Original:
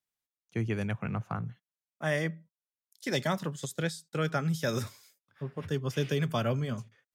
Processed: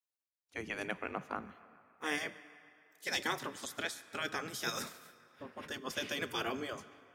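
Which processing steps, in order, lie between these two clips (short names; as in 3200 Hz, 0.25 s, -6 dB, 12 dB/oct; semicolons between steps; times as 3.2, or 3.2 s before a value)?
spectral gate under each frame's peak -10 dB weak; narrowing echo 0.142 s, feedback 72%, band-pass 1600 Hz, level -21 dB; on a send at -15.5 dB: reverb RT60 2.7 s, pre-delay 3 ms; on the sum: gain +1 dB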